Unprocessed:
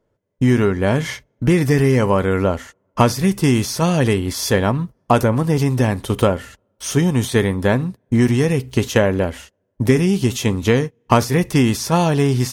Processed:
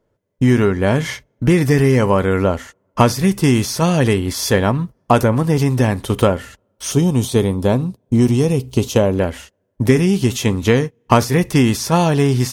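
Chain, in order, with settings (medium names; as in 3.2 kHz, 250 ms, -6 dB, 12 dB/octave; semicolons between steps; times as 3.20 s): 6.92–9.18 s: peaking EQ 1.8 kHz -13.5 dB 0.72 oct; trim +1.5 dB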